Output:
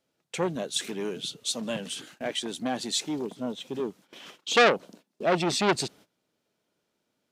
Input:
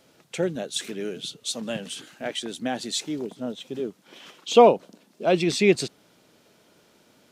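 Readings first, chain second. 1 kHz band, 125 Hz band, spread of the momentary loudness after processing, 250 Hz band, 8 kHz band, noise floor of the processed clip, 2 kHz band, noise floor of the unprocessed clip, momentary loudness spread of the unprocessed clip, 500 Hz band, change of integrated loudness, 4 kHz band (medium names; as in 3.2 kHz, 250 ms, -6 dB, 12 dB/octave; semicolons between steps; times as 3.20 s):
-3.5 dB, -3.5 dB, 13 LU, -4.0 dB, 0.0 dB, -79 dBFS, +3.0 dB, -61 dBFS, 17 LU, -6.0 dB, -3.5 dB, +0.5 dB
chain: gate -49 dBFS, range -19 dB; transformer saturation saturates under 2.3 kHz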